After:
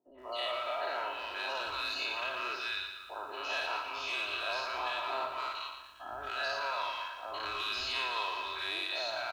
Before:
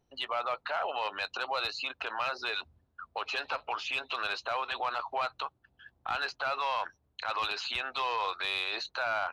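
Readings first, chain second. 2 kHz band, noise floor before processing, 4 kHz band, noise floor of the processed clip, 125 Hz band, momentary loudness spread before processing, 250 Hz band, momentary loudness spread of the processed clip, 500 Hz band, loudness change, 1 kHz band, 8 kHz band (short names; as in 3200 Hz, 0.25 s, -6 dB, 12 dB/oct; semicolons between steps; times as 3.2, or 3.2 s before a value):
-1.5 dB, -74 dBFS, 0.0 dB, -50 dBFS, n/a, 7 LU, 0.0 dB, 7 LU, -1.5 dB, -2.0 dB, -3.5 dB, +0.5 dB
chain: spectral dilation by 0.12 s; comb 3.1 ms, depth 58%; three bands offset in time mids, lows, highs 70/210 ms, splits 180/1100 Hz; lo-fi delay 0.116 s, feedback 55%, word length 9-bit, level -7 dB; gain -8.5 dB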